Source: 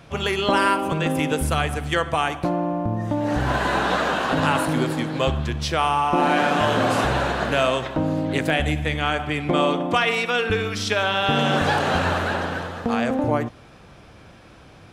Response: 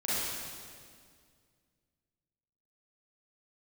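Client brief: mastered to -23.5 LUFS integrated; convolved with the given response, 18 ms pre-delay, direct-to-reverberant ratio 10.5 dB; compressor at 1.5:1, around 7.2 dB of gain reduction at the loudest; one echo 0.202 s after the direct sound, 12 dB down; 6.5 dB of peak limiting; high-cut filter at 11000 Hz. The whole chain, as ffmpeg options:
-filter_complex "[0:a]lowpass=11k,acompressor=threshold=-36dB:ratio=1.5,alimiter=limit=-20.5dB:level=0:latency=1,aecho=1:1:202:0.251,asplit=2[a][b];[1:a]atrim=start_sample=2205,adelay=18[c];[b][c]afir=irnorm=-1:irlink=0,volume=-19dB[d];[a][d]amix=inputs=2:normalize=0,volume=6.5dB"

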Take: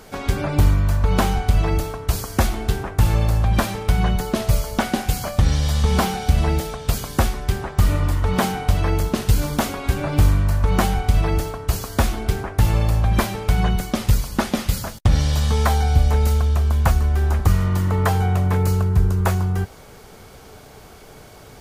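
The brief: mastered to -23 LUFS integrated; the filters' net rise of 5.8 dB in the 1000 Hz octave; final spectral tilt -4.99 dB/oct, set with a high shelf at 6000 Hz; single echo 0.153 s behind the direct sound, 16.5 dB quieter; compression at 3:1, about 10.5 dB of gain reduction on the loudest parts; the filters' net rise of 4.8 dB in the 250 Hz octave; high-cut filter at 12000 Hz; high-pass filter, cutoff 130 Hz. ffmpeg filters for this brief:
-af "highpass=130,lowpass=12k,equalizer=f=250:t=o:g=7,equalizer=f=1k:t=o:g=7,highshelf=f=6k:g=8,acompressor=threshold=-25dB:ratio=3,aecho=1:1:153:0.15,volume=4.5dB"

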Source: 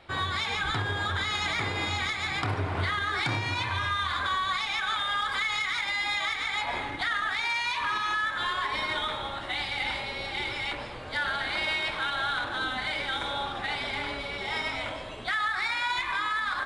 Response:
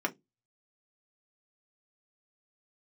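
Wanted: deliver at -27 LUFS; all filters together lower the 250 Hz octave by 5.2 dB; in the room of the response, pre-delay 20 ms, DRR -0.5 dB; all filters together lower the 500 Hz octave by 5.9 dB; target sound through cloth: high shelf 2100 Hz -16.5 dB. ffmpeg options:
-filter_complex "[0:a]equalizer=f=250:t=o:g=-5,equalizer=f=500:t=o:g=-5,asplit=2[a][b];[1:a]atrim=start_sample=2205,adelay=20[c];[b][c]afir=irnorm=-1:irlink=0,volume=-6.5dB[d];[a][d]amix=inputs=2:normalize=0,highshelf=f=2.1k:g=-16.5,volume=5.5dB"

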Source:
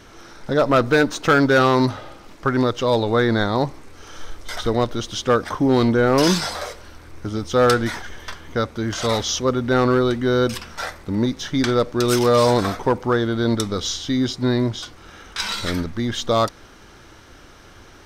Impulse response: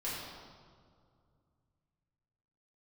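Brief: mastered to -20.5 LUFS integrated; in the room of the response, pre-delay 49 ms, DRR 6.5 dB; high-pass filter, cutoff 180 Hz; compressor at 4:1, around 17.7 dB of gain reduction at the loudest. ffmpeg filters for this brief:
-filter_complex "[0:a]highpass=180,acompressor=threshold=-34dB:ratio=4,asplit=2[a][b];[1:a]atrim=start_sample=2205,adelay=49[c];[b][c]afir=irnorm=-1:irlink=0,volume=-10dB[d];[a][d]amix=inputs=2:normalize=0,volume=14.5dB"

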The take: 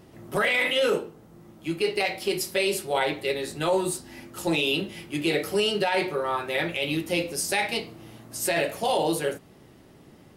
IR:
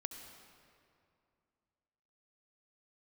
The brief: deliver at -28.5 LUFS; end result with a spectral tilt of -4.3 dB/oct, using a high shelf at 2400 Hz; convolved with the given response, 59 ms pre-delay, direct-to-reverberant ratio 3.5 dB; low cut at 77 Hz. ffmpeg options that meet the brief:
-filter_complex "[0:a]highpass=77,highshelf=f=2.4k:g=-7,asplit=2[a][b];[1:a]atrim=start_sample=2205,adelay=59[c];[b][c]afir=irnorm=-1:irlink=0,volume=-1.5dB[d];[a][d]amix=inputs=2:normalize=0,volume=-2.5dB"

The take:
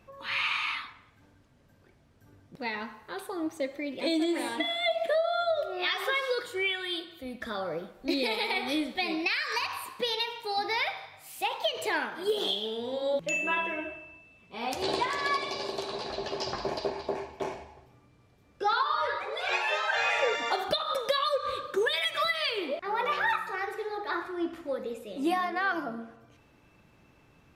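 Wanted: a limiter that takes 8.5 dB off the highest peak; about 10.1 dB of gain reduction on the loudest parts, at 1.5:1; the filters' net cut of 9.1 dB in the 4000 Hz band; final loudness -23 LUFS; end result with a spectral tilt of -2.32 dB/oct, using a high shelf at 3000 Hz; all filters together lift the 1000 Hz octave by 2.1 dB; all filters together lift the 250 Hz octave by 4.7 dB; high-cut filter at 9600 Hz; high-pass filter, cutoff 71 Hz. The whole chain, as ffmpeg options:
-af "highpass=71,lowpass=9.6k,equalizer=f=250:t=o:g=6.5,equalizer=f=1k:t=o:g=3.5,highshelf=f=3k:g=-7,equalizer=f=4k:t=o:g=-6.5,acompressor=threshold=-50dB:ratio=1.5,volume=17dB,alimiter=limit=-13.5dB:level=0:latency=1"

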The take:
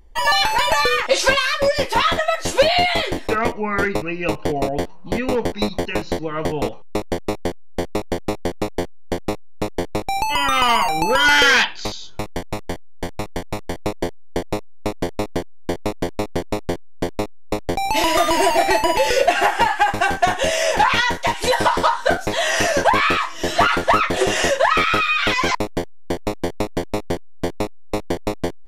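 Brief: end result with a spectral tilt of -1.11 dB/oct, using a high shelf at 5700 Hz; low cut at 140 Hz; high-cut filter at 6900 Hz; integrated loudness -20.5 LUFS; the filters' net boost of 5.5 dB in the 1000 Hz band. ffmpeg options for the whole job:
-af "highpass=140,lowpass=6.9k,equalizer=f=1k:t=o:g=7,highshelf=f=5.7k:g=-6.5,volume=-3.5dB"

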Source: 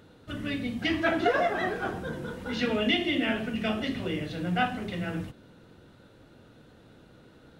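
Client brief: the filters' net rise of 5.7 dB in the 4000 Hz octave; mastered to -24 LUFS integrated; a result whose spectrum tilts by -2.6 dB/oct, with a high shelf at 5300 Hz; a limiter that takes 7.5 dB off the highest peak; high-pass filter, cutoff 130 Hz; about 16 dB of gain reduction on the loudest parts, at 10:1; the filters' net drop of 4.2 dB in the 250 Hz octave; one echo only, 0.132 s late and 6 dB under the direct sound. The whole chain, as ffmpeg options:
-af "highpass=130,equalizer=f=250:t=o:g=-5,equalizer=f=4k:t=o:g=7,highshelf=f=5.3k:g=4,acompressor=threshold=-36dB:ratio=10,alimiter=level_in=8dB:limit=-24dB:level=0:latency=1,volume=-8dB,aecho=1:1:132:0.501,volume=16.5dB"

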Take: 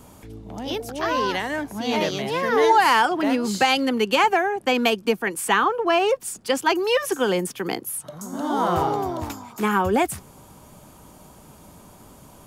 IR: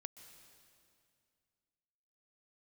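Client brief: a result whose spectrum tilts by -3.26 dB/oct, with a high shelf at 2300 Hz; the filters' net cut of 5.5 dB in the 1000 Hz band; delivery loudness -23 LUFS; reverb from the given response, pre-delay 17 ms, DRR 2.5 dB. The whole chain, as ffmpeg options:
-filter_complex "[0:a]equalizer=f=1k:t=o:g=-6,highshelf=f=2.3k:g=-6,asplit=2[a][b];[1:a]atrim=start_sample=2205,adelay=17[c];[b][c]afir=irnorm=-1:irlink=0,volume=2.5dB[d];[a][d]amix=inputs=2:normalize=0,volume=0.5dB"

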